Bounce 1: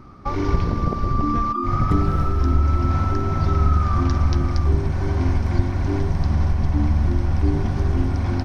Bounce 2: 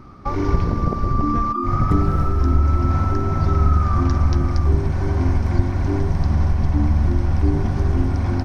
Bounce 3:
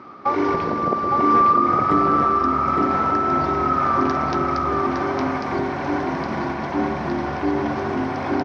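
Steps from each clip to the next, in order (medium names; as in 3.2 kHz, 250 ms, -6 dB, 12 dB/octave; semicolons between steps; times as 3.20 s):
dynamic bell 3.4 kHz, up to -5 dB, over -44 dBFS, Q 1; trim +1.5 dB
band-pass 360–3600 Hz; on a send: delay 861 ms -3.5 dB; on the sum: trim +6.5 dB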